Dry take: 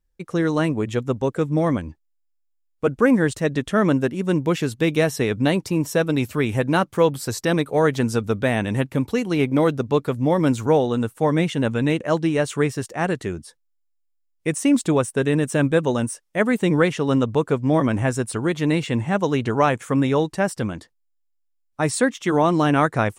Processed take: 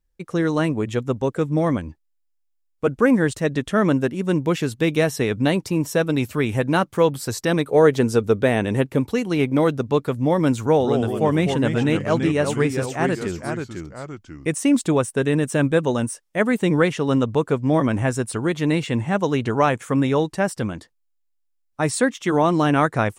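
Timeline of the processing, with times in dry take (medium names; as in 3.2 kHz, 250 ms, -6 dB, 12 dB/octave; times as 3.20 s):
7.68–9.00 s: peaking EQ 420 Hz +6.5 dB
10.62–14.49 s: ever faster or slower copies 180 ms, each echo -2 st, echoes 2, each echo -6 dB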